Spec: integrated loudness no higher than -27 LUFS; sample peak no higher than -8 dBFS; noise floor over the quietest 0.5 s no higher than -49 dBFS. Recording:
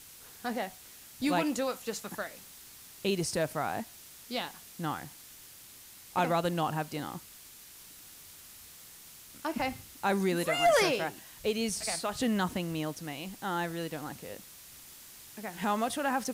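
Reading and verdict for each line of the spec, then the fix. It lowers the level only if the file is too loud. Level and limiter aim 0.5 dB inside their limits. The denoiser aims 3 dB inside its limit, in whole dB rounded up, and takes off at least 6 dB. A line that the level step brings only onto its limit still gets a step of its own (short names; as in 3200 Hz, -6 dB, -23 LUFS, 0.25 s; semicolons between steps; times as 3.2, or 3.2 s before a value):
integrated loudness -32.5 LUFS: OK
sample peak -15.5 dBFS: OK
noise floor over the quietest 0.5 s -52 dBFS: OK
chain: none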